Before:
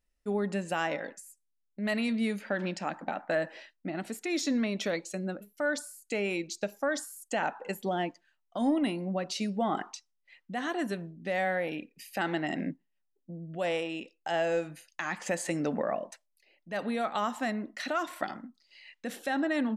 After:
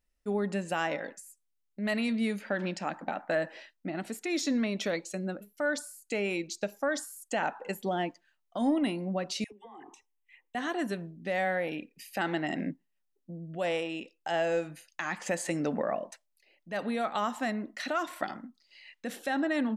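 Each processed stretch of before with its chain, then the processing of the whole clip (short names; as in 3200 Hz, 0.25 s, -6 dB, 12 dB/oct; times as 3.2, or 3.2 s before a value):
9.44–10.55 dispersion lows, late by 81 ms, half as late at 810 Hz + compressor 5:1, threshold -43 dBFS + fixed phaser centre 930 Hz, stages 8
whole clip: dry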